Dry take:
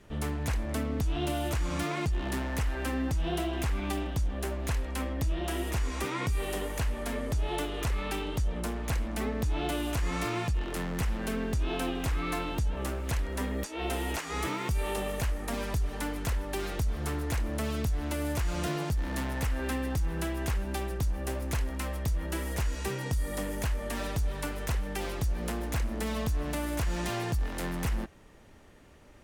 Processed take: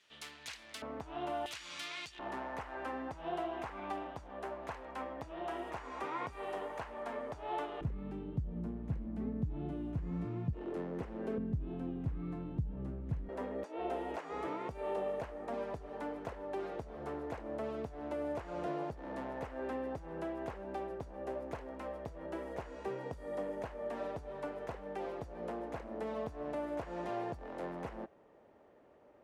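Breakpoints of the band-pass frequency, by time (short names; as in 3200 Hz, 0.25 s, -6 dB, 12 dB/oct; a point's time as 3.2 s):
band-pass, Q 1.4
3800 Hz
from 0.82 s 880 Hz
from 1.46 s 3600 Hz
from 2.19 s 840 Hz
from 7.81 s 160 Hz
from 10.53 s 410 Hz
from 11.38 s 150 Hz
from 13.29 s 580 Hz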